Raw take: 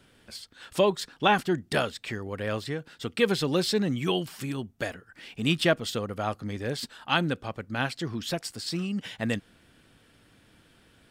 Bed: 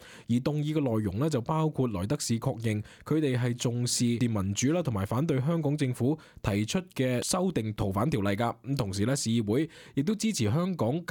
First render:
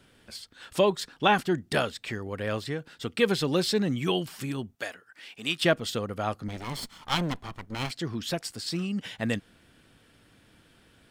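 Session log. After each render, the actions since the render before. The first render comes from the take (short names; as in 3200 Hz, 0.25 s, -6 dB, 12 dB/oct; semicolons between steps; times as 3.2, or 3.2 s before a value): 4.75–5.62 HPF 820 Hz 6 dB/oct; 6.48–7.91 minimum comb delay 0.94 ms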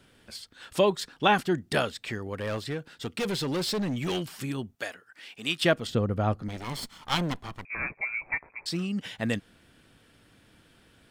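2.33–4.31 hard clip -26 dBFS; 5.87–6.42 tilt -3 dB/oct; 7.65–8.66 inverted band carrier 2500 Hz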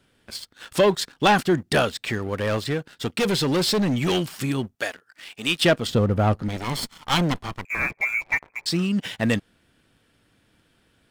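sample leveller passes 2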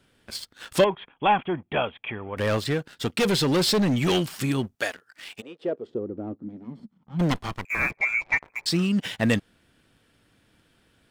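0.84–2.37 rippled Chebyshev low-pass 3400 Hz, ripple 9 dB; 5.4–7.19 band-pass 530 Hz -> 170 Hz, Q 4.7; 7.96–8.44 LPF 6500 Hz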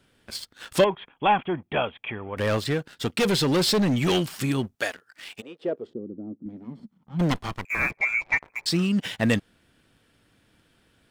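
5.93–6.46 band-pass 220 Hz, Q 1.5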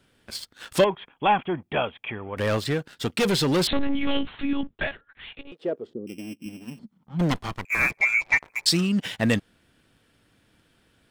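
3.67–5.52 monotone LPC vocoder at 8 kHz 280 Hz; 6.07–6.79 sample sorter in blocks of 16 samples; 7.72–8.81 bell 10000 Hz +8 dB 2.9 oct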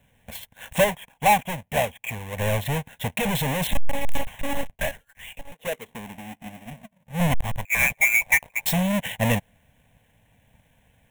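half-waves squared off; fixed phaser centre 1300 Hz, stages 6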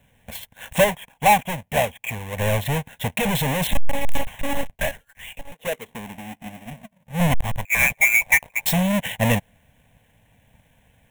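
gain +2.5 dB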